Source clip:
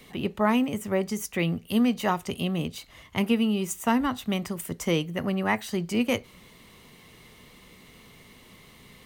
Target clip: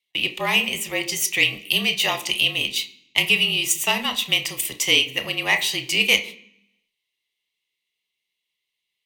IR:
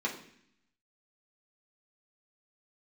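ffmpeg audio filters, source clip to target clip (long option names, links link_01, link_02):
-filter_complex "[0:a]agate=range=-41dB:threshold=-41dB:ratio=16:detection=peak,acrossover=split=380 2700:gain=0.224 1 0.112[link_01][link_02][link_03];[link_01][link_02][link_03]amix=inputs=3:normalize=0,afreqshift=-40,aexciter=amount=10.2:drive=9.9:freq=2400,asplit=2[link_04][link_05];[1:a]atrim=start_sample=2205,adelay=29[link_06];[link_05][link_06]afir=irnorm=-1:irlink=0,volume=-13.5dB[link_07];[link_04][link_07]amix=inputs=2:normalize=0"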